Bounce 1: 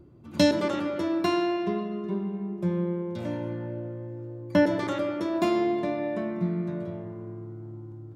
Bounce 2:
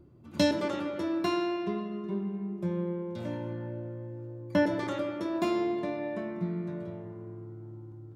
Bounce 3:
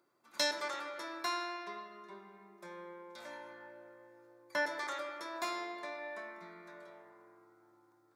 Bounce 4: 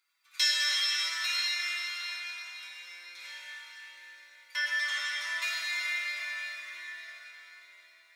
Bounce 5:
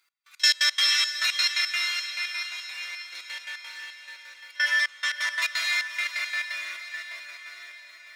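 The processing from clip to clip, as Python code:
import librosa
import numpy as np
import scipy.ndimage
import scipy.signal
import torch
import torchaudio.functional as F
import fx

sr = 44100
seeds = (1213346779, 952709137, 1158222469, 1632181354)

y1 = fx.doubler(x, sr, ms=25.0, db=-12)
y1 = F.gain(torch.from_numpy(y1), -4.0).numpy()
y2 = scipy.signal.sosfilt(scipy.signal.butter(2, 1200.0, 'highpass', fs=sr, output='sos'), y1)
y2 = fx.peak_eq(y2, sr, hz=2900.0, db=-12.5, octaves=0.36)
y2 = F.gain(torch.from_numpy(y2), 3.0).numpy()
y3 = fx.highpass_res(y2, sr, hz=2500.0, q=2.4)
y3 = y3 + 0.85 * np.pad(y3, (int(6.2 * sr / 1000.0), 0))[:len(y3)]
y3 = fx.rev_plate(y3, sr, seeds[0], rt60_s=4.7, hf_ratio=1.0, predelay_ms=0, drr_db=-6.0)
y4 = fx.step_gate(y3, sr, bpm=173, pattern='x..x.x.x.xx', floor_db=-24.0, edge_ms=4.5)
y4 = fx.echo_diffused(y4, sr, ms=587, feedback_pct=50, wet_db=-10.0)
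y4 = F.gain(torch.from_numpy(y4), 7.5).numpy()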